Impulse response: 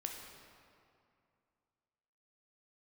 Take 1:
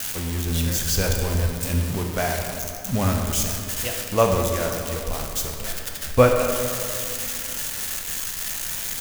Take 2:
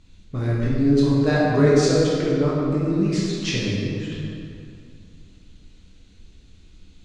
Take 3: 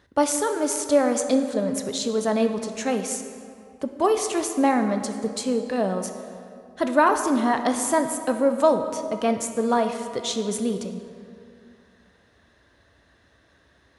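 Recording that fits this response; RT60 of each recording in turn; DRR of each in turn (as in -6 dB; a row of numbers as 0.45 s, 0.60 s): 1; 2.5 s, 2.5 s, 2.4 s; 1.5 dB, -7.5 dB, 6.5 dB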